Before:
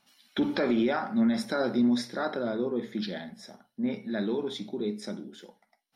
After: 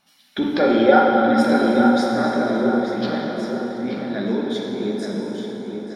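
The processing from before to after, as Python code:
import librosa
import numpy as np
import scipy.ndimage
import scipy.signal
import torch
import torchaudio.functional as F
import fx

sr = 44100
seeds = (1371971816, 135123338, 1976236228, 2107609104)

p1 = fx.small_body(x, sr, hz=(530.0, 770.0, 1400.0, 3200.0), ring_ms=45, db=fx.line((0.59, 13.0), (0.99, 17.0)), at=(0.59, 0.99), fade=0.02)
p2 = p1 + fx.echo_filtered(p1, sr, ms=878, feedback_pct=42, hz=3000.0, wet_db=-6, dry=0)
p3 = fx.rev_plate(p2, sr, seeds[0], rt60_s=3.9, hf_ratio=0.65, predelay_ms=0, drr_db=-1.0)
y = p3 * librosa.db_to_amplitude(3.5)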